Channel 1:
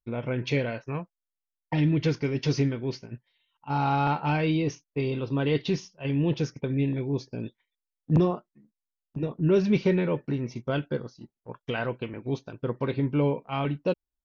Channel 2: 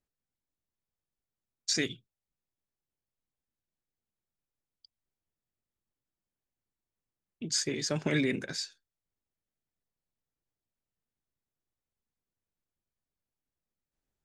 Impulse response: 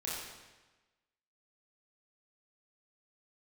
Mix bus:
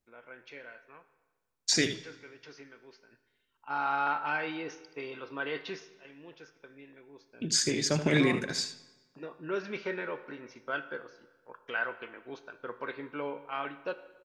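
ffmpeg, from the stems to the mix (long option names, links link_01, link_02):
-filter_complex "[0:a]highpass=400,equalizer=frequency=1500:width=1.6:gain=13,volume=1dB,afade=type=in:start_time=2.92:duration=0.67:silence=0.251189,afade=type=out:start_time=5.73:duration=0.21:silence=0.281838,afade=type=in:start_time=7.3:duration=0.25:silence=0.298538,asplit=2[link_01][link_02];[link_02]volume=-13dB[link_03];[1:a]volume=2.5dB,asplit=3[link_04][link_05][link_06];[link_05]volume=-16.5dB[link_07];[link_06]volume=-10.5dB[link_08];[2:a]atrim=start_sample=2205[link_09];[link_03][link_07]amix=inputs=2:normalize=0[link_10];[link_10][link_09]afir=irnorm=-1:irlink=0[link_11];[link_08]aecho=0:1:78:1[link_12];[link_01][link_04][link_11][link_12]amix=inputs=4:normalize=0"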